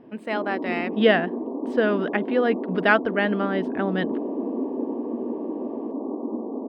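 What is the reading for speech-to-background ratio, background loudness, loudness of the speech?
6.0 dB, −30.0 LKFS, −24.0 LKFS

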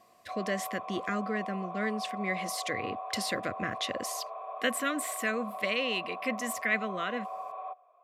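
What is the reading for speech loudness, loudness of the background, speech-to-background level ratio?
−33.5 LKFS, −40.0 LKFS, 6.5 dB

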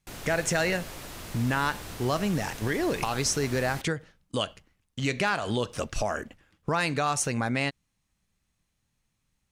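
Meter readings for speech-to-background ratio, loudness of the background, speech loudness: 11.5 dB, −40.5 LKFS, −29.0 LKFS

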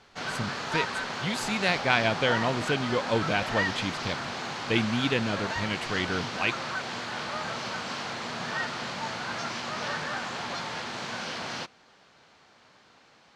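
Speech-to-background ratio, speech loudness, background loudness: 3.5 dB, −29.0 LKFS, −32.5 LKFS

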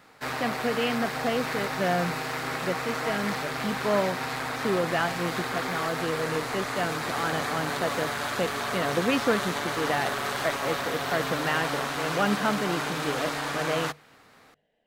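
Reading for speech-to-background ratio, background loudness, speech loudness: −0.5 dB, −30.0 LKFS, −30.5 LKFS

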